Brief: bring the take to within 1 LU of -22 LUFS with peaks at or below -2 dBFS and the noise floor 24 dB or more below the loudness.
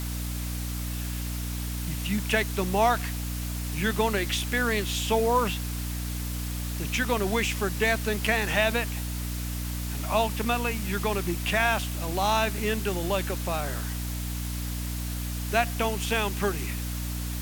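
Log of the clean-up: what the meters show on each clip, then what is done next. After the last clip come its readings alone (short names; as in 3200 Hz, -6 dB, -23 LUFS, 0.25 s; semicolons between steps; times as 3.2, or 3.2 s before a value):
hum 60 Hz; harmonics up to 300 Hz; hum level -30 dBFS; noise floor -32 dBFS; noise floor target -52 dBFS; loudness -28.0 LUFS; peak -8.5 dBFS; loudness target -22.0 LUFS
-> notches 60/120/180/240/300 Hz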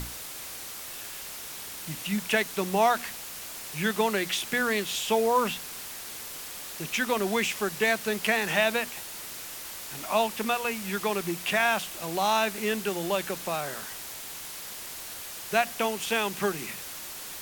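hum none; noise floor -40 dBFS; noise floor target -53 dBFS
-> denoiser 13 dB, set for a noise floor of -40 dBFS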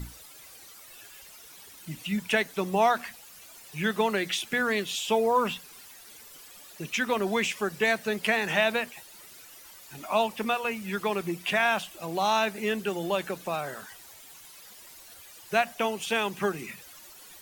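noise floor -50 dBFS; noise floor target -52 dBFS
-> denoiser 6 dB, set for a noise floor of -50 dBFS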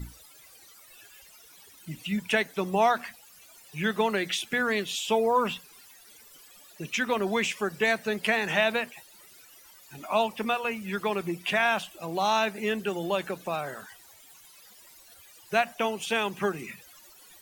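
noise floor -54 dBFS; loudness -28.0 LUFS; peak -9.5 dBFS; loudness target -22.0 LUFS
-> gain +6 dB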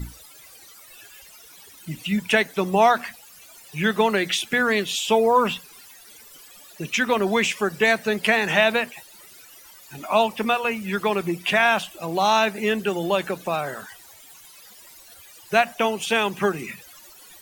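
loudness -22.0 LUFS; peak -3.5 dBFS; noise floor -48 dBFS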